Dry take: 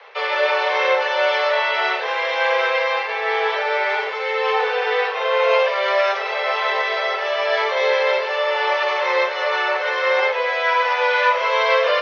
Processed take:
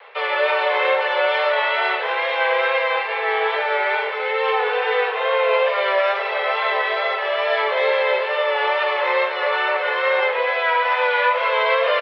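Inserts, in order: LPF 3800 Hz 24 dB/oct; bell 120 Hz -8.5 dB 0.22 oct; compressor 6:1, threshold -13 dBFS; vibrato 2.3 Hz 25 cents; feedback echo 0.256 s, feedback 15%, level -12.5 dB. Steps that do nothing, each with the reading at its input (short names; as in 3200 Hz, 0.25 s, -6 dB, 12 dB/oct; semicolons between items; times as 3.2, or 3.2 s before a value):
bell 120 Hz: input band starts at 360 Hz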